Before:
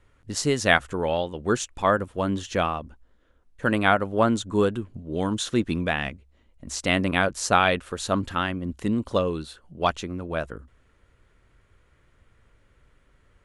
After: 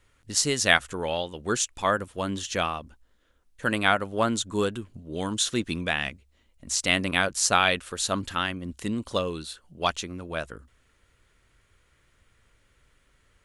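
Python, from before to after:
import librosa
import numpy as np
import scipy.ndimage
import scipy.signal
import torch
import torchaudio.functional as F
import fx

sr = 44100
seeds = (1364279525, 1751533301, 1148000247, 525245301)

y = fx.high_shelf(x, sr, hz=2200.0, db=12.0)
y = y * 10.0 ** (-5.0 / 20.0)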